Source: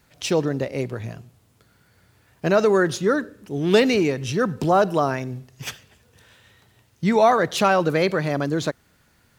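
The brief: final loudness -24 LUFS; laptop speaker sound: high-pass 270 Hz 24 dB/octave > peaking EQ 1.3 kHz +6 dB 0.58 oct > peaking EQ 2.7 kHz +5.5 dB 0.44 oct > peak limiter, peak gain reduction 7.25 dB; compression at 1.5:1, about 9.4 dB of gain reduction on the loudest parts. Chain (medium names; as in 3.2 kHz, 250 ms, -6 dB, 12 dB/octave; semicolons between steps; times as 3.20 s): compression 1.5:1, threshold -38 dBFS; high-pass 270 Hz 24 dB/octave; peaking EQ 1.3 kHz +6 dB 0.58 oct; peaking EQ 2.7 kHz +5.5 dB 0.44 oct; trim +7 dB; peak limiter -12.5 dBFS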